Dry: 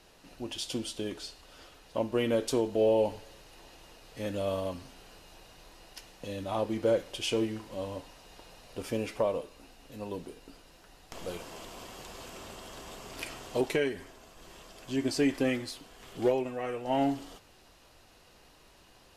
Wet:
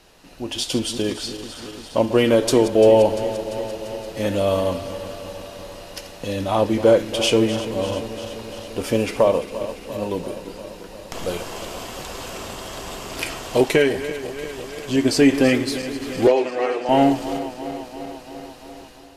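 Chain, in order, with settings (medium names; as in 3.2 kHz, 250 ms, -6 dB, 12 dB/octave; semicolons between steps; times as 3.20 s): backward echo that repeats 172 ms, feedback 82%, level -13 dB; level rider gain up to 6 dB; 16.27–16.89 s: three-band isolator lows -22 dB, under 280 Hz, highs -16 dB, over 7.6 kHz; trim +6 dB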